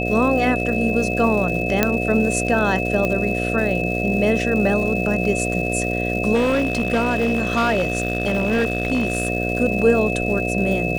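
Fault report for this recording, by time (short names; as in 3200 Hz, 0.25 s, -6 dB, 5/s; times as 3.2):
buzz 60 Hz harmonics 12 -24 dBFS
crackle 300/s -29 dBFS
tone 2600 Hz -25 dBFS
1.83 pop -1 dBFS
3.05 pop -10 dBFS
6.34–9.28 clipped -14.5 dBFS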